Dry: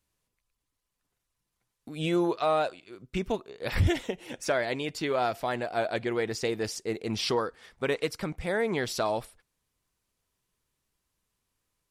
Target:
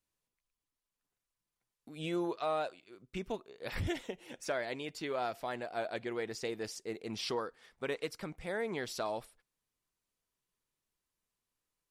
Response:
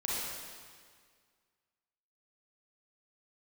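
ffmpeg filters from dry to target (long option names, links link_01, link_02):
-af "equalizer=frequency=68:width_type=o:width=1.8:gain=-7,volume=-8dB"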